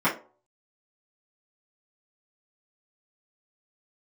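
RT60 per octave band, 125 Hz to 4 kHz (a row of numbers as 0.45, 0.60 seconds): 0.25, 0.35, 0.45, 0.40, 0.25, 0.20 seconds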